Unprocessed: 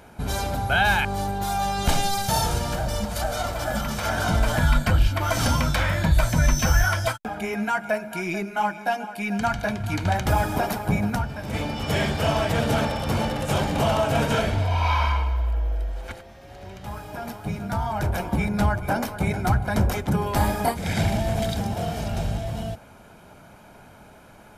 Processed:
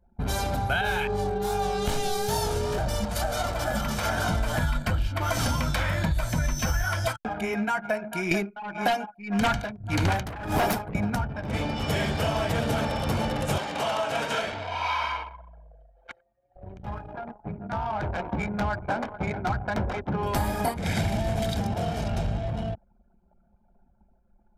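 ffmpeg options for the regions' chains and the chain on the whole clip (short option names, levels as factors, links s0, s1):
-filter_complex "[0:a]asettb=1/sr,asplit=3[s0][s1][s2];[s0]atrim=end=0.814[s3];[s1]atrim=start=0.81:end=2.78,asetpts=PTS-STARTPTS,afade=t=in:d=0.004:c=qsin,afade=t=out:st=1.966:d=0.004:c=qsin,flanger=delay=19:depth=7.1:speed=2.5,aeval=exprs='val(0)+0.0447*sin(2*PI*420*n/s)':c=same[s4];[s2]atrim=start=2.776[s5];[s3][s4]acrossfade=d=0.004:c1=hsin:c2=qsin[s6];[s6][s5]acrossfade=d=0.004:c1=qsin:c2=hsin,asettb=1/sr,asplit=3[s7][s8][s9];[s7]atrim=end=8.314[s10];[s8]atrim=start=8.31:end=10.95,asetpts=PTS-STARTPTS,afade=t=in:d=0.004:c=qsin,afade=t=out:st=2.636:d=0.004:c=qsin,aeval=exprs='0.355*sin(PI/2*3.16*val(0)/0.355)':c=same,aeval=exprs='val(0)*pow(10,-24*(0.5-0.5*cos(2*PI*1.7*n/s))/20)':c=same[s11];[s9]atrim=start=10.946[s12];[s10][s11]acrossfade=d=0.004:c1=hsin:c2=qsin[s13];[s13][s12]acrossfade=d=0.004:c1=qsin:c2=hsin,asettb=1/sr,asplit=3[s14][s15][s16];[s14]atrim=end=13.584[s17];[s15]atrim=start=13.58:end=16.56,asetpts=PTS-STARTPTS,afade=t=in:d=0.004:c=qsin,afade=t=out:st=2.976:d=0.004:c=qsin,highpass=f=820:p=1,highshelf=f=12000:g=-11.5[s18];[s16]atrim=start=16.556[s19];[s17][s18]acrossfade=d=0.004:c1=hsin:c2=qsin[s20];[s20][s19]acrossfade=d=0.004:c1=qsin:c2=hsin,asettb=1/sr,asplit=3[s21][s22][s23];[s21]atrim=end=17.134[s24];[s22]atrim=start=17.13:end=20.23,asetpts=PTS-STARTPTS,afade=t=in:d=0.004:c=qsin,afade=t=out:st=3.096:d=0.004:c=qsin,lowshelf=f=290:g=-8,adynamicsmooth=sensitivity=3:basefreq=1300[s25];[s23]atrim=start=20.226[s26];[s24][s25]acrossfade=d=0.004:c1=hsin:c2=qsin[s27];[s27][s26]acrossfade=d=0.004:c1=qsin:c2=hsin,anlmdn=2.51,acompressor=threshold=0.0794:ratio=6"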